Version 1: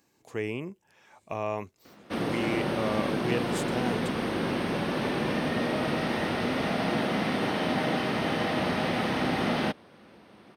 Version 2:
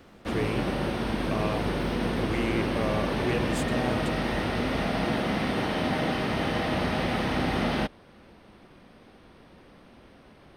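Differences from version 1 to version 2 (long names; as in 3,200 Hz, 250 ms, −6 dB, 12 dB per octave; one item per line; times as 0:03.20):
background: entry −1.85 s
master: remove high-pass filter 130 Hz 12 dB per octave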